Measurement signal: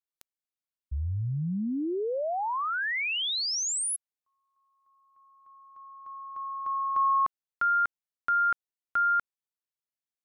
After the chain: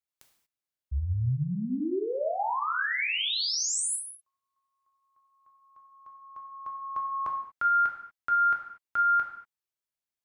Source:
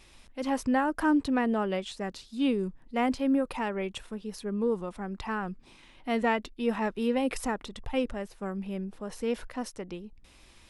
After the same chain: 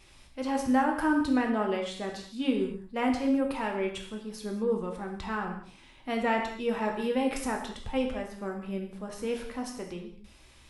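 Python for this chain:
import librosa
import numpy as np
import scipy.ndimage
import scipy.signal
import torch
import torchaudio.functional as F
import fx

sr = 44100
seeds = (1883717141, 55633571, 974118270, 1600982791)

y = fx.rev_gated(x, sr, seeds[0], gate_ms=260, shape='falling', drr_db=1.0)
y = F.gain(torch.from_numpy(y), -2.0).numpy()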